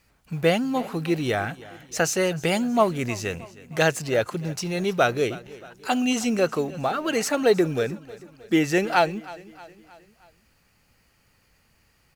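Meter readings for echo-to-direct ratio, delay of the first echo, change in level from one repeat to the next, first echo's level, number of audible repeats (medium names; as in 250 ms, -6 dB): -18.0 dB, 314 ms, -6.0 dB, -19.5 dB, 3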